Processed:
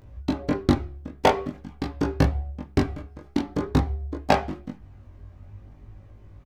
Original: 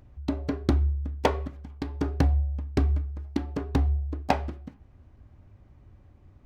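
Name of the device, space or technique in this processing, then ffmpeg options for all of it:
double-tracked vocal: -filter_complex "[0:a]asettb=1/sr,asplit=3[a][b][c];[a]atrim=end=3.464[d];[b]atrim=start=3.46:end=4.17,asetpts=PTS-STARTPTS,afade=t=in:d=0.004:c=qsin,afade=t=out:st=0.706:d=0.004:c=qsin,bandreject=f=2.7k:w=8.4[e];[c]atrim=start=4.166[f];[d][e]acrossfade=d=0.004:c1=hsin:c2=qsin[g];[g][f]acrossfade=d=0.004:c1=qsin:c2=hsin,asplit=2[h][i];[i]adelay=20,volume=-3dB[j];[h][j]amix=inputs=2:normalize=0,flanger=delay=18:depth=3.9:speed=0.48,volume=7.5dB"

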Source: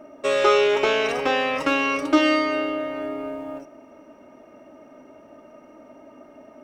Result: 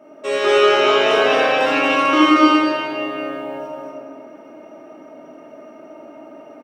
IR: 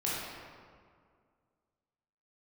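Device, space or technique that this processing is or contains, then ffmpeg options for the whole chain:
stadium PA: -filter_complex "[0:a]highpass=180,equalizer=f=3k:t=o:w=0.2:g=3,aecho=1:1:166.2|233.2:0.282|0.794[a];[1:a]atrim=start_sample=2205[b];[a][b]afir=irnorm=-1:irlink=0,volume=-2.5dB"

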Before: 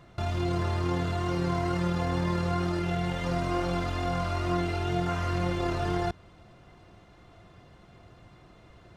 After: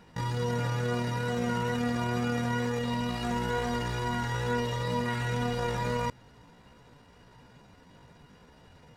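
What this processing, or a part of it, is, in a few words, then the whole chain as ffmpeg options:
chipmunk voice: -af "asetrate=60591,aresample=44100,atempo=0.727827,volume=-1.5dB"

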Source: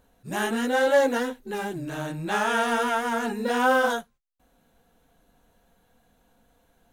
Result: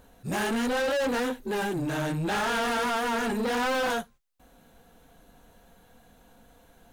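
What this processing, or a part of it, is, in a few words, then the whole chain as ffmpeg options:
saturation between pre-emphasis and de-emphasis: -af "highshelf=f=9.4k:g=12,asoftclip=type=tanh:threshold=-32dB,highshelf=f=9.4k:g=-12,volume=7dB"

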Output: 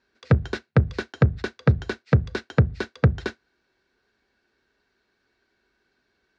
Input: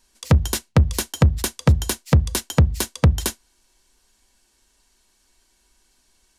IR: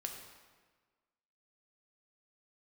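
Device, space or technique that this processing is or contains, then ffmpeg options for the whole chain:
guitar cabinet: -af "highpass=93,equalizer=f=120:t=q:w=4:g=6,equalizer=f=420:t=q:w=4:g=7,equalizer=f=970:t=q:w=4:g=-6,equalizer=f=1.5k:t=q:w=4:g=8,equalizer=f=3.1k:t=q:w=4:g=-9,lowpass=f=3.8k:w=0.5412,lowpass=f=3.8k:w=1.3066,volume=-3dB"

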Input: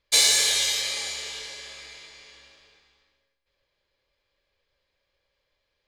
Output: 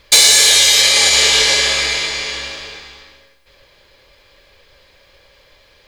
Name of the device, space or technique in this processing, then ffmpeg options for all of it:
loud club master: -af "acompressor=threshold=-25dB:ratio=2.5,asoftclip=type=hard:threshold=-19dB,alimiter=level_in=27.5dB:limit=-1dB:release=50:level=0:latency=1,volume=-1dB"

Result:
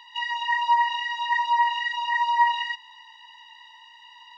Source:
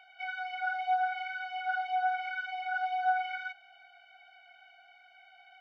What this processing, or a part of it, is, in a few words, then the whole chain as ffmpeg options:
nightcore: -af "asetrate=56448,aresample=44100,volume=9dB"

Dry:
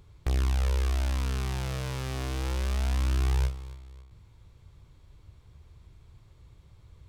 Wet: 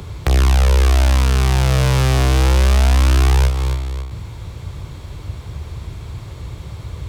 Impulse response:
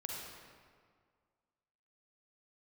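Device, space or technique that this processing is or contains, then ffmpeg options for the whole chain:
mastering chain: -filter_complex "[0:a]highpass=53,equalizer=f=660:t=o:w=0.77:g=2,acrossover=split=150|300[a][b][c];[a]acompressor=threshold=-32dB:ratio=4[d];[b]acompressor=threshold=-54dB:ratio=4[e];[c]acompressor=threshold=-40dB:ratio=4[f];[d][e][f]amix=inputs=3:normalize=0,acompressor=threshold=-38dB:ratio=2,alimiter=level_in=26dB:limit=-1dB:release=50:level=0:latency=1,volume=-1dB"

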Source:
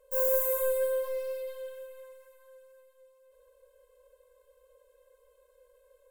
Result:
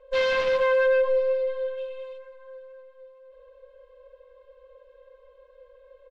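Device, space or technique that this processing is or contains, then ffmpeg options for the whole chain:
synthesiser wavefolder: -filter_complex "[0:a]aecho=1:1:5.6:0.53,asplit=3[a][b][c];[a]afade=t=out:st=1.77:d=0.02[d];[b]highshelf=f=2.2k:t=q:w=3:g=6.5,afade=t=in:st=1.77:d=0.02,afade=t=out:st=2.17:d=0.02[e];[c]afade=t=in:st=2.17:d=0.02[f];[d][e][f]amix=inputs=3:normalize=0,aeval=exprs='0.0596*(abs(mod(val(0)/0.0596+3,4)-2)-1)':c=same,lowpass=f=3.7k:w=0.5412,lowpass=f=3.7k:w=1.3066,volume=8dB"

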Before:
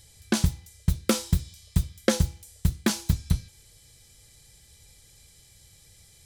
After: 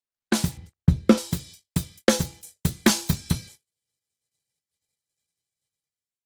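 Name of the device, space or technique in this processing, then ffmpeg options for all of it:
video call: -filter_complex "[0:a]asettb=1/sr,asplit=3[a][b][c];[a]atrim=end=0.574[d];[b]atrim=start=0.57:end=1.18,asetpts=PTS-STARTPTS,afade=t=in:d=0.004:c=qsin,afade=t=out:st=0.606:d=0.004:c=qsin,aemphasis=mode=reproduction:type=riaa[e];[c]atrim=start=1.176[f];[d][e]acrossfade=d=0.004:c1=hsin:c2=qsin[g];[g][f]acrossfade=d=0.004:c1=qsin:c2=hsin,highpass=170,dynaudnorm=f=150:g=5:m=8dB,agate=range=-45dB:threshold=-43dB:ratio=16:detection=peak" -ar 48000 -c:a libopus -b:a 20k

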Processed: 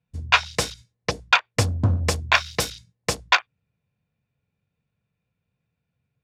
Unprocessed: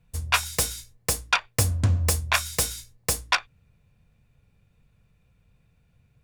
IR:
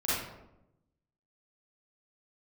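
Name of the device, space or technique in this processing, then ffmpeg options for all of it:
over-cleaned archive recording: -filter_complex "[0:a]highpass=110,lowpass=5.2k,bandreject=f=1.2k:w=22,afwtdn=0.01,asettb=1/sr,asplit=3[a][b][c];[a]atrim=end=2.234[d];[b]atrim=start=2.23:end=2.7,asetpts=PTS-STARTPTS,afade=t=in:d=0.004:c=qsin,afade=t=out:st=0.466:d=0.004:c=qsin,equalizer=f=14k:t=o:w=0.45:g=10.5[e];[c]atrim=start=2.696[f];[d][e]acrossfade=d=0.004:c1=hsin:c2=qsin[g];[g][f]acrossfade=d=0.004:c1=qsin:c2=hsin,volume=5.5dB"

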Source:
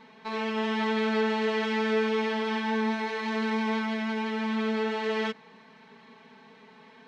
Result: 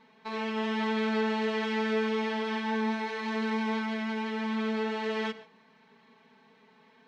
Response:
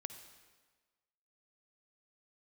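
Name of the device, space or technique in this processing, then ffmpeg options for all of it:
keyed gated reverb: -filter_complex "[0:a]asplit=3[a][b][c];[1:a]atrim=start_sample=2205[d];[b][d]afir=irnorm=-1:irlink=0[e];[c]apad=whole_len=311922[f];[e][f]sidechaingate=range=-33dB:threshold=-45dB:ratio=16:detection=peak,volume=1dB[g];[a][g]amix=inputs=2:normalize=0,volume=-7.5dB"

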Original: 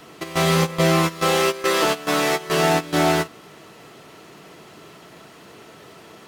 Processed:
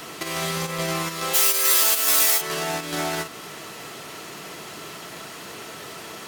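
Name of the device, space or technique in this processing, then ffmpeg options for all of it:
mastering chain: -filter_complex "[0:a]equalizer=f=3.1k:t=o:w=1.8:g=-3.5,acompressor=threshold=-27dB:ratio=1.5,asoftclip=type=tanh:threshold=-14dB,tiltshelf=f=1.2k:g=-5.5,asoftclip=type=hard:threshold=-14.5dB,alimiter=level_in=24.5dB:limit=-1dB:release=50:level=0:latency=1,asplit=3[a][b][c];[a]afade=t=out:st=1.33:d=0.02[d];[b]aemphasis=mode=production:type=riaa,afade=t=in:st=1.33:d=0.02,afade=t=out:st=2.4:d=0.02[e];[c]afade=t=in:st=2.4:d=0.02[f];[d][e][f]amix=inputs=3:normalize=0,volume=-16dB"

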